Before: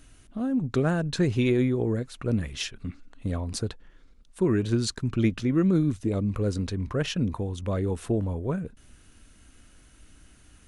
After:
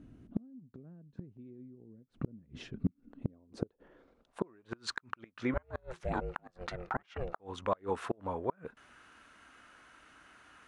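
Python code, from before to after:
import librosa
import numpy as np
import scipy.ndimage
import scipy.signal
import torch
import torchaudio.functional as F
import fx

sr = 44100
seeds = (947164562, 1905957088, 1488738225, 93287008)

y = fx.filter_sweep_bandpass(x, sr, from_hz=210.0, to_hz=1200.0, start_s=2.94, end_s=4.85, q=1.5)
y = fx.gate_flip(y, sr, shuts_db=-28.0, range_db=-34)
y = fx.ring_mod(y, sr, carrier_hz=260.0, at=(5.54, 7.4))
y = y * 10.0 ** (9.5 / 20.0)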